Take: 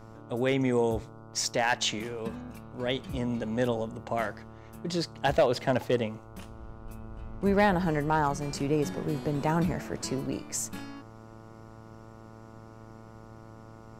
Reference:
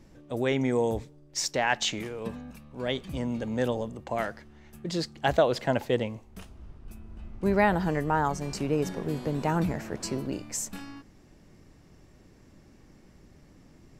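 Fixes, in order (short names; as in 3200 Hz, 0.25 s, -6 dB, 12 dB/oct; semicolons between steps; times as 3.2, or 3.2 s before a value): clip repair -15.5 dBFS; de-hum 111.4 Hz, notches 13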